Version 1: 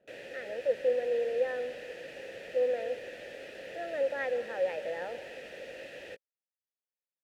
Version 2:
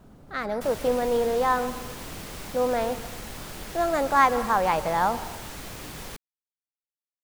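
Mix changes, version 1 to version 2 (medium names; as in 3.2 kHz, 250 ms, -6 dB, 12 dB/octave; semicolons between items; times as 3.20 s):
first sound: muted; master: remove vowel filter e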